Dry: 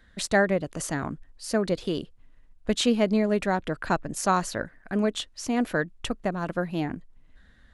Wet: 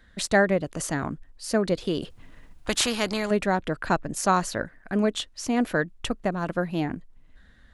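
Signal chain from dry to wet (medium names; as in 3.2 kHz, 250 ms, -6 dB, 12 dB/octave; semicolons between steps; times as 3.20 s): 2.02–3.31 s: spectrum-flattening compressor 2:1; trim +1.5 dB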